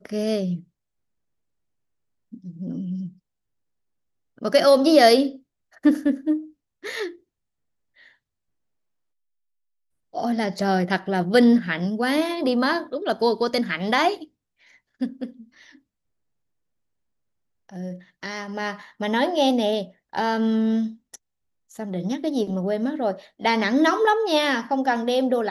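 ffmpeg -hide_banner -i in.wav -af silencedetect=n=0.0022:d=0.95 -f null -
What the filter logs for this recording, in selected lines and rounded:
silence_start: 0.64
silence_end: 2.32 | silence_duration: 1.68
silence_start: 3.18
silence_end: 4.37 | silence_duration: 1.19
silence_start: 8.15
silence_end: 10.13 | silence_duration: 1.98
silence_start: 15.79
silence_end: 17.69 | silence_duration: 1.90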